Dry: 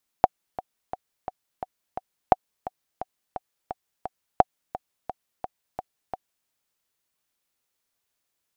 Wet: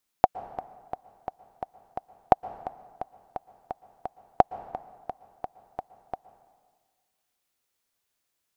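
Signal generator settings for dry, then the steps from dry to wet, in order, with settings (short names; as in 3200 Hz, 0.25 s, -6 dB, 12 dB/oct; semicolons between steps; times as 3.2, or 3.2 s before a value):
metronome 173 bpm, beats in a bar 6, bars 3, 746 Hz, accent 16.5 dB -1 dBFS
plate-style reverb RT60 1.6 s, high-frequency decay 0.75×, pre-delay 0.105 s, DRR 16.5 dB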